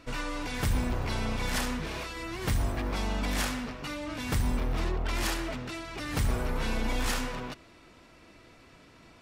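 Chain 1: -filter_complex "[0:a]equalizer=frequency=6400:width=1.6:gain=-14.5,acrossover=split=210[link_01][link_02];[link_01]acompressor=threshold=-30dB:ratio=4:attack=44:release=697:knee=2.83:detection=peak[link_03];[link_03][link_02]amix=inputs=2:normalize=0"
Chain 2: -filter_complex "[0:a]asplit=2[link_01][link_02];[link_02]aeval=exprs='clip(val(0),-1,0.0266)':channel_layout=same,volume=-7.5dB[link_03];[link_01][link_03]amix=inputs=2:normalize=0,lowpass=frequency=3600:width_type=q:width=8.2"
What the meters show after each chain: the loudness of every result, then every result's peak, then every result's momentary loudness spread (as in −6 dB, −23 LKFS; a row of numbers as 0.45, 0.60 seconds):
−34.0, −25.5 LKFS; −17.5, −10.0 dBFS; 5, 6 LU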